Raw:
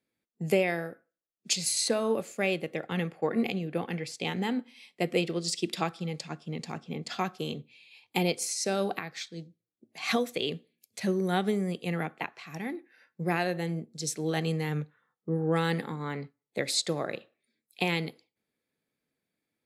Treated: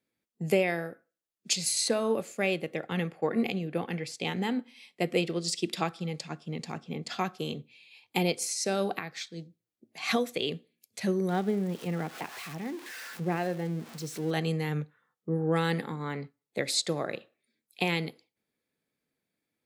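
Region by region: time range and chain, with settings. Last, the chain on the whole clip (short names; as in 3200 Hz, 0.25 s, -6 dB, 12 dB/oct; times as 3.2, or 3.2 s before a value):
11.29–14.31 switching spikes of -23.5 dBFS + LPF 1000 Hz 6 dB/oct + upward compressor, threshold -35 dBFS
whole clip: dry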